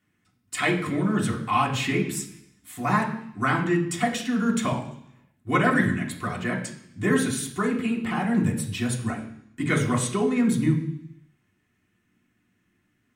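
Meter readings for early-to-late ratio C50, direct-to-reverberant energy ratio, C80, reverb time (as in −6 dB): 8.0 dB, −4.0 dB, 11.0 dB, 0.70 s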